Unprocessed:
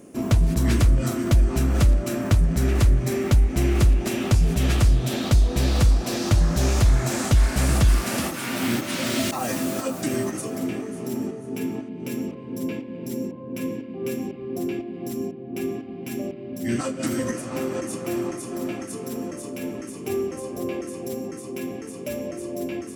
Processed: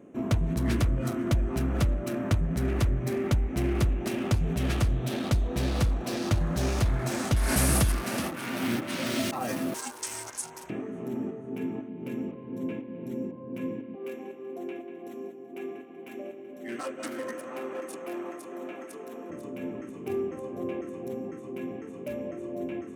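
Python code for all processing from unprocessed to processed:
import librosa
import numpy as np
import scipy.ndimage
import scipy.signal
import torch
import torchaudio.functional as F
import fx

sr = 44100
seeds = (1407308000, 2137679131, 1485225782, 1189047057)

y = fx.chain(x, sr, fx.peak_eq(hz=11000.0, db=10.5, octaves=0.62),
    fx.env_flatten(amount_pct=50), at=(7.36, 7.92))
y = fx.chain(y, sr, fx.highpass(hz=580.0, slope=24),
    fx.peak_eq(hz=7400.0, db=12.0, octaves=1.2),
    fx.ring_mod(carrier_hz=280.0), at=(9.74, 10.7))
y = fx.chain(y, sr, fx.highpass(hz=420.0, slope=12),
    fx.echo_feedback(ms=190, feedback_pct=44, wet_db=-11.5), at=(13.95, 19.3))
y = fx.wiener(y, sr, points=9)
y = fx.highpass(y, sr, hz=84.0, slope=6)
y = fx.notch(y, sr, hz=7300.0, q=17.0)
y = y * librosa.db_to_amplitude(-4.0)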